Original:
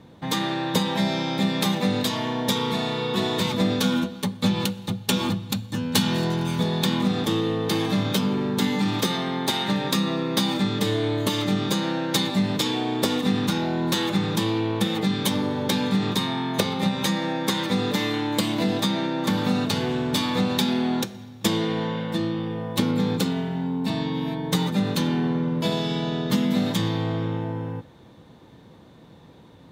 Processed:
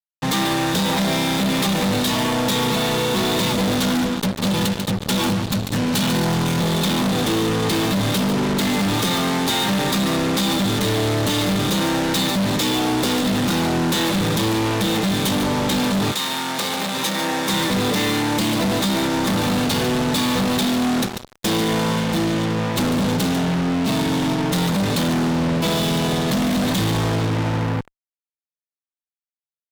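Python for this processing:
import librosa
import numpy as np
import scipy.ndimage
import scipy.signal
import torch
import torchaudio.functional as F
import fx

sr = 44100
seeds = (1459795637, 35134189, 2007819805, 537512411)

y = x + 10.0 ** (-14.0 / 20.0) * np.pad(x, (int(144 * sr / 1000.0), 0))[:len(x)]
y = fx.fuzz(y, sr, gain_db=36.0, gate_db=-35.0)
y = fx.highpass(y, sr, hz=fx.line((16.11, 990.0), (17.48, 280.0)), slope=6, at=(16.11, 17.48), fade=0.02)
y = F.gain(torch.from_numpy(y), -4.5).numpy()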